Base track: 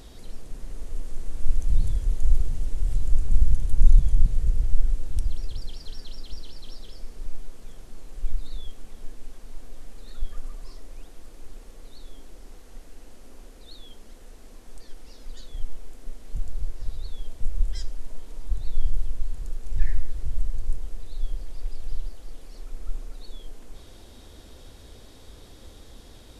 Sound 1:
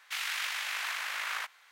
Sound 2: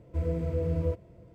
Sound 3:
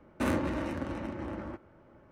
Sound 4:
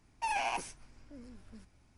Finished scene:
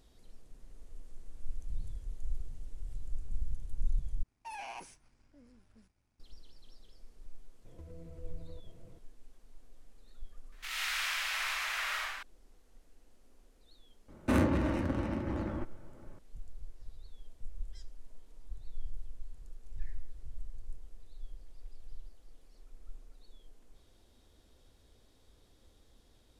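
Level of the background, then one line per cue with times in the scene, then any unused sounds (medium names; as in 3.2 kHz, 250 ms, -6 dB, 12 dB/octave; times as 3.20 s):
base track -17 dB
4.23 s: replace with 4 -13 dB + waveshaping leveller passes 1
7.65 s: add 2 -4.5 dB + compression 10:1, threshold -42 dBFS
10.52 s: add 1 -7.5 dB + algorithmic reverb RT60 1.2 s, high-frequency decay 0.95×, pre-delay 30 ms, DRR -7 dB
14.08 s: add 3 -0.5 dB + bass shelf 200 Hz +7.5 dB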